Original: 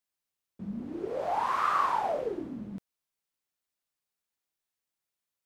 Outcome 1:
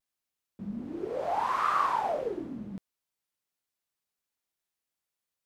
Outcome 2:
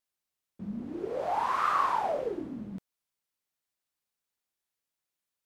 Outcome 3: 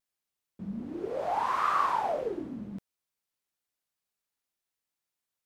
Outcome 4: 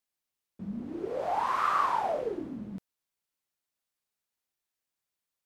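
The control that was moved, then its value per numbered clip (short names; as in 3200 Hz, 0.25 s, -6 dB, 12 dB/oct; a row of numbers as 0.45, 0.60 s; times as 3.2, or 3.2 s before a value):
vibrato, rate: 0.58, 3.2, 1.1, 5.7 Hz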